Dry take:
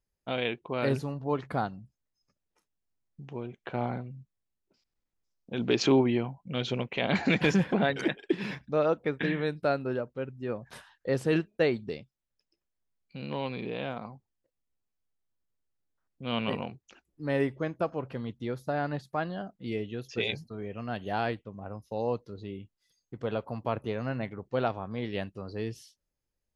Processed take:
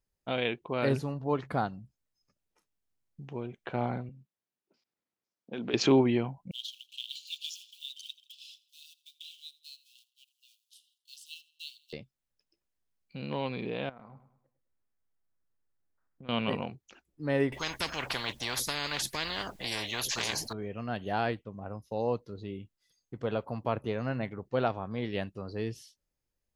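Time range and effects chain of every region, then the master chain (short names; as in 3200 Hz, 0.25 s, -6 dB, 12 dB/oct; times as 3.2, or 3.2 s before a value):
4.09–5.74 HPF 200 Hz + high shelf 5300 Hz -9.5 dB + compressor 4:1, threshold -32 dBFS
6.51–11.93 G.711 law mismatch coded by A + steep high-pass 2900 Hz 96 dB/oct + feedback echo 82 ms, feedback 47%, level -20.5 dB
13.89–16.29 resonant high shelf 2300 Hz -7 dB, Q 1.5 + compressor 10:1, threshold -45 dBFS + feedback echo 0.103 s, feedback 39%, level -11 dB
17.52–20.53 notch 1300 Hz, Q 5.1 + spectral compressor 10:1
whole clip: dry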